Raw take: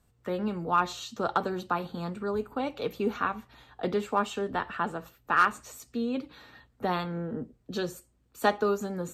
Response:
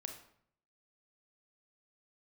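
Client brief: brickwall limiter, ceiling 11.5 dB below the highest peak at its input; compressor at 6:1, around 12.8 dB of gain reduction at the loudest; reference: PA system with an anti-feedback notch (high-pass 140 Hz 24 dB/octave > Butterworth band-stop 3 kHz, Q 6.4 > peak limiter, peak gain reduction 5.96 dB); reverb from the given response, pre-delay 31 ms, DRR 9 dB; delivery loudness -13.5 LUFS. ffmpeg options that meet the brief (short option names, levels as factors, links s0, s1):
-filter_complex "[0:a]acompressor=threshold=0.0251:ratio=6,alimiter=level_in=2.11:limit=0.0631:level=0:latency=1,volume=0.473,asplit=2[s0][s1];[1:a]atrim=start_sample=2205,adelay=31[s2];[s1][s2]afir=irnorm=-1:irlink=0,volume=0.473[s3];[s0][s3]amix=inputs=2:normalize=0,highpass=f=140:w=0.5412,highpass=f=140:w=1.3066,asuperstop=centerf=3000:order=8:qfactor=6.4,volume=31.6,alimiter=limit=0.668:level=0:latency=1"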